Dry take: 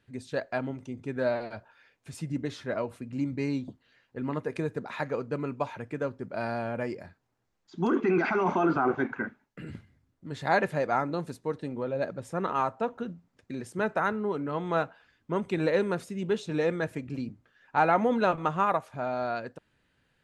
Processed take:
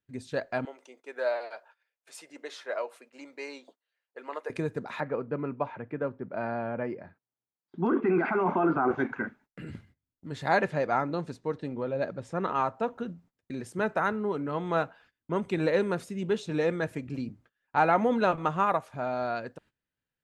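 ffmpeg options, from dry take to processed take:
-filter_complex "[0:a]asettb=1/sr,asplit=3[s0][s1][s2];[s0]atrim=end=0.654[s3];[s1]atrim=start=0.65:end=4.5,asetpts=PTS-STARTPTS,afade=t=in:d=0.004:c=qsin,afade=t=out:st=3.846:d=0.004:c=qsin,highpass=f=470:w=0.5412,highpass=f=470:w=1.3066[s4];[s2]atrim=start=4.496[s5];[s3][s4]acrossfade=d=0.004:c1=hsin:c2=qsin[s6];[s6][s5]acrossfade=d=0.004:c1=qsin:c2=hsin,asettb=1/sr,asplit=3[s7][s8][s9];[s7]atrim=end=5.004[s10];[s8]atrim=start=5:end=8.91,asetpts=PTS-STARTPTS,afade=t=in:d=0.004:c=qsin,afade=t=out:st=3.906:d=0.004:c=qsin,highpass=110,lowpass=2000[s11];[s9]atrim=start=8.906[s12];[s10][s11]acrossfade=d=0.004:c1=hsin:c2=qsin[s13];[s13][s12]acrossfade=d=0.004:c1=qsin:c2=hsin,asettb=1/sr,asplit=3[s14][s15][s16];[s14]atrim=end=10.664[s17];[s15]atrim=start=10.66:end=12.75,asetpts=PTS-STARTPTS,afade=t=in:d=0.004:c=qsin,afade=t=out:st=2.086:d=0.004:c=qsin,lowpass=6500[s18];[s16]atrim=start=12.746[s19];[s17][s18]acrossfade=d=0.004:c1=hsin:c2=qsin[s20];[s20][s19]acrossfade=d=0.004:c1=qsin:c2=hsin,agate=range=0.1:threshold=0.00158:ratio=16:detection=peak"

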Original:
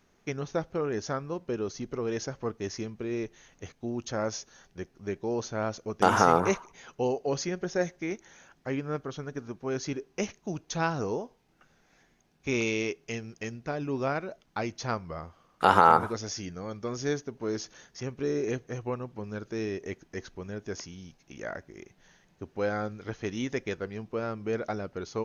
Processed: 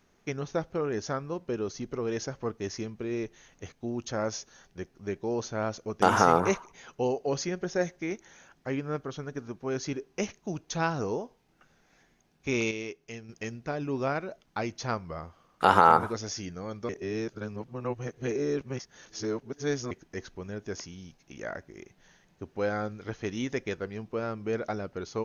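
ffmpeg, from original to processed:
-filter_complex "[0:a]asplit=5[s0][s1][s2][s3][s4];[s0]atrim=end=12.712[s5];[s1]atrim=start=12.708:end=13.292,asetpts=PTS-STARTPTS,volume=0.473[s6];[s2]atrim=start=13.288:end=16.892[s7];[s3]atrim=start=16.888:end=19.912,asetpts=PTS-STARTPTS,areverse[s8];[s4]atrim=start=19.908[s9];[s5][s6]acrossfade=d=0.004:c1=hsin:c2=hsin[s10];[s10][s7]acrossfade=d=0.004:c1=hsin:c2=hsin[s11];[s11][s8]acrossfade=d=0.004:c1=hsin:c2=hsin[s12];[s12][s9]acrossfade=d=0.004:c1=hsin:c2=hsin"

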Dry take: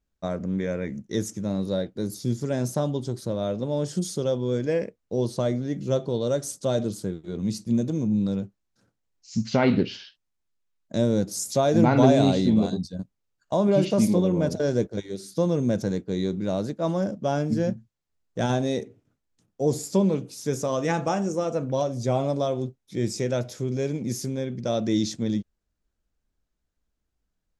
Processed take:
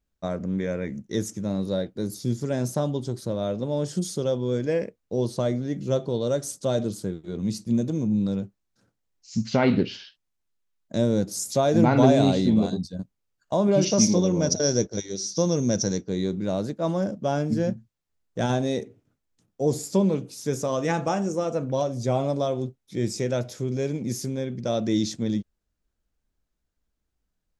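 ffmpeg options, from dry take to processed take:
-filter_complex "[0:a]asettb=1/sr,asplit=3[s0][s1][s2];[s0]atrim=end=13.814[s3];[s1]atrim=start=13.81:end=16.09,asetpts=PTS-STARTPTS,afade=t=in:d=0.004:c=qsin,afade=t=out:st=2.276:d=0.004:c=qsin,lowpass=f=5800:t=q:w=14[s4];[s2]atrim=start=16.086[s5];[s3][s4]acrossfade=d=0.004:c1=hsin:c2=qsin[s6];[s6][s5]acrossfade=d=0.004:c1=qsin:c2=hsin"

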